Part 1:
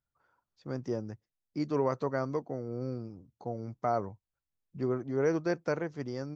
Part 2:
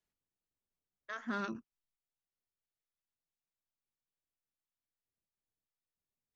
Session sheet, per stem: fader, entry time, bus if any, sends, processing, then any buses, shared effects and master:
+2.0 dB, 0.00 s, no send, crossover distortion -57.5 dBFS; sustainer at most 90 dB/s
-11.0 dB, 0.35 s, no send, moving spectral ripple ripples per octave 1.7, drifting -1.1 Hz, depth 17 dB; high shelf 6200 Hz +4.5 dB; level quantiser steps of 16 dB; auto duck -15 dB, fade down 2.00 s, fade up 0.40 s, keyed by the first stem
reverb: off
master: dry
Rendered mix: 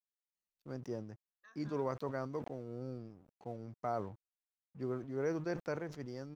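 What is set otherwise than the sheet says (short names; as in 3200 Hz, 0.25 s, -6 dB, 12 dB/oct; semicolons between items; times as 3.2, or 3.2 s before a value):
stem 1 +2.0 dB -> -7.5 dB; stem 2: missing level quantiser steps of 16 dB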